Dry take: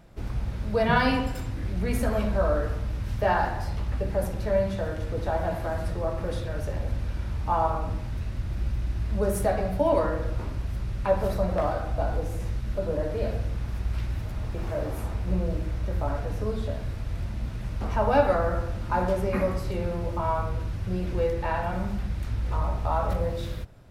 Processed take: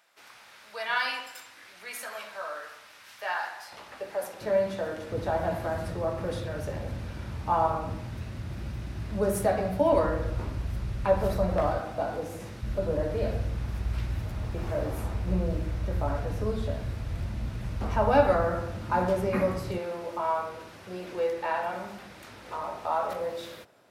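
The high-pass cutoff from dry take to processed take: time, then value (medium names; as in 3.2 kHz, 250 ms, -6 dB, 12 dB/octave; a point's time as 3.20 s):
1.3 kHz
from 3.72 s 620 Hz
from 4.41 s 240 Hz
from 5.12 s 100 Hz
from 9.93 s 48 Hz
from 11.80 s 180 Hz
from 12.62 s 48 Hz
from 18.44 s 100 Hz
from 19.78 s 390 Hz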